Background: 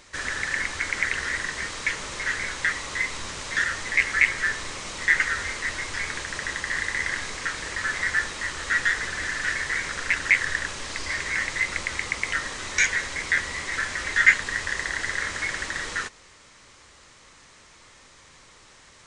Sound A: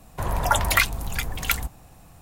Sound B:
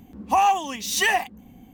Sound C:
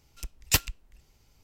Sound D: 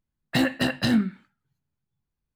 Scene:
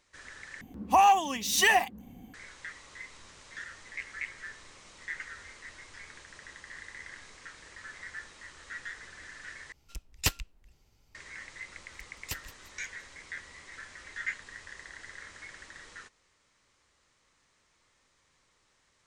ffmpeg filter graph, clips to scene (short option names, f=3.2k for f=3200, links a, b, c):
-filter_complex "[3:a]asplit=2[a][b];[0:a]volume=-18.5dB[c];[a]highshelf=f=9.3k:g=-6[d];[b]aecho=1:1:173|346|519|692:0.168|0.0672|0.0269|0.0107[e];[c]asplit=3[f][g][h];[f]atrim=end=0.614[i];[2:a]atrim=end=1.73,asetpts=PTS-STARTPTS,volume=-2dB[j];[g]atrim=start=2.336:end=9.724[k];[d]atrim=end=1.43,asetpts=PTS-STARTPTS,volume=-3.5dB[l];[h]atrim=start=11.146[m];[e]atrim=end=1.43,asetpts=PTS-STARTPTS,volume=-15.5dB,afade=t=in:d=0.004:c=hsin,afade=t=out:st=1.426:d=0.004:c=hsin,adelay=11770[n];[i][j]acrossfade=d=0.004:c1=hsin:c2=hsin[o];[o][k]acrossfade=d=0.004:c1=hsin:c2=hsin[p];[p][l]acrossfade=d=0.004:c1=hsin:c2=hsin[q];[q][m]acrossfade=d=0.004:c1=hsin:c2=hsin[r];[r][n]amix=inputs=2:normalize=0"